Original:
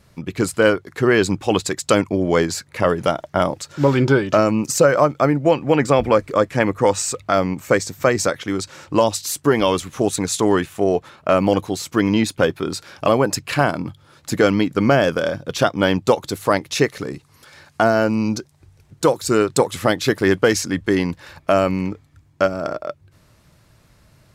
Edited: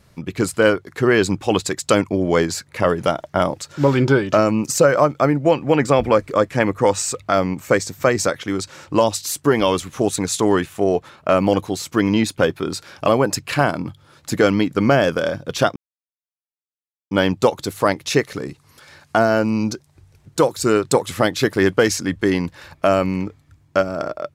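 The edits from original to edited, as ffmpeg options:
-filter_complex "[0:a]asplit=2[a][b];[a]atrim=end=15.76,asetpts=PTS-STARTPTS,afade=t=out:st=15.756:d=0.004:c=hsin,apad=pad_dur=1.35[c];[b]atrim=start=15.76,asetpts=PTS-STARTPTS,afade=t=in:d=0.004:c=hsin[d];[c][d]concat=n=2:v=0:a=1"

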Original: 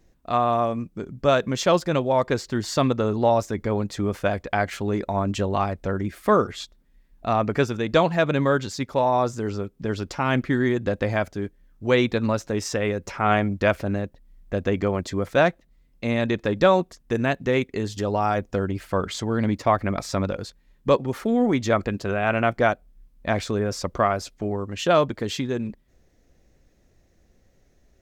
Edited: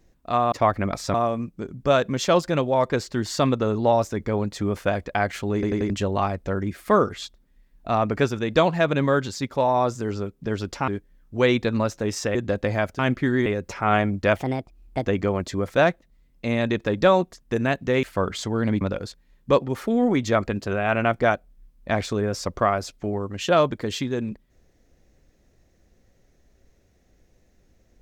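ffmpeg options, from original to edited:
-filter_complex "[0:a]asplit=15[a][b][c][d][e][f][g][h][i][j][k][l][m][n][o];[a]atrim=end=0.522[p];[b]atrim=start=19.568:end=20.192[q];[c]atrim=start=0.518:end=5.012[r];[d]atrim=start=4.918:end=5.012[s];[e]atrim=start=4.918:end=5.012[t];[f]atrim=start=4.918:end=5.012[u];[g]atrim=start=5.278:end=10.262[v];[h]atrim=start=11.368:end=12.842[w];[i]atrim=start=10.728:end=11.372[x];[j]atrim=start=10.258:end=10.732[y];[k]atrim=start=12.838:end=13.744[z];[l]atrim=start=13.74:end=14.65,asetpts=PTS-STARTPTS,asetrate=57330,aresample=44100[aa];[m]atrim=start=14.646:end=17.622[ab];[n]atrim=start=18.788:end=19.572[ac];[o]atrim=start=20.188[ad];[p][q]acrossfade=d=0.004:c1=hsin:c2=hsin[ae];[ae][r]acrossfade=d=0.004:c1=hsin:c2=hsin[af];[af][s]acrossfade=d=0.004:c1=hsin:c2=hsin[ag];[ag][t]acrossfade=d=0.004:c1=hsin:c2=hsin[ah];[ah][u]acrossfade=d=0.004:c1=hsin:c2=hsin[ai];[ai][v]acrossfade=d=0.004:c1=hsin:c2=hsin[aj];[aj][w]acrossfade=d=0.004:c1=hsin:c2=hsin[ak];[ak][x]acrossfade=d=0.004:c1=hsin:c2=hsin[al];[al][y]acrossfade=d=0.004:c1=hsin:c2=hsin[am];[am][z]acrossfade=d=0.004:c1=hsin:c2=hsin[an];[an][aa]acrossfade=d=0.004:c1=hsin:c2=hsin[ao];[ao][ab]acrossfade=d=0.004:c1=hsin:c2=hsin[ap];[ap][ac]acrossfade=d=0.004:c1=hsin:c2=hsin[aq];[aq][ad]acrossfade=d=0.004:c1=hsin:c2=hsin"

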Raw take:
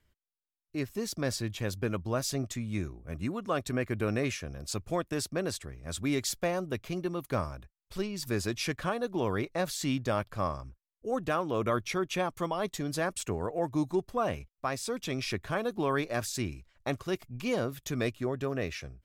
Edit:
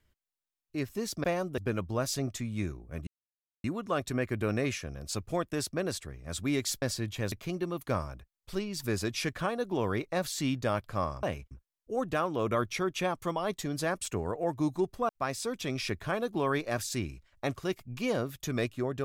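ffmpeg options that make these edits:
-filter_complex "[0:a]asplit=9[a][b][c][d][e][f][g][h][i];[a]atrim=end=1.242[j];[b]atrim=start=6.408:end=6.752[k];[c]atrim=start=1.738:end=3.23,asetpts=PTS-STARTPTS,afade=t=out:st=1.488:d=0.004:c=hsin,apad=pad_dur=0.57[l];[d]atrim=start=3.23:end=6.412,asetpts=PTS-STARTPTS,afade=t=in:d=0.004:c=hsin[m];[e]atrim=start=1.238:end=1.742[n];[f]atrim=start=6.748:end=10.662[o];[g]atrim=start=14.238:end=14.522[p];[h]atrim=start=10.658:end=14.242[q];[i]atrim=start=14.518[r];[j][k]acrossfade=d=0.004:c1=hsin:c2=hsin[s];[l][m]concat=n=2:v=0:a=1[t];[s][t]acrossfade=d=0.004:c1=hsin:c2=hsin[u];[u][n]acrossfade=d=0.004:c1=hsin:c2=hsin[v];[v][o]acrossfade=d=0.004:c1=hsin:c2=hsin[w];[w][p]acrossfade=d=0.004:c1=hsin:c2=hsin[x];[x][q]acrossfade=d=0.004:c1=hsin:c2=hsin[y];[y][r]acrossfade=d=0.004:c1=hsin:c2=hsin"

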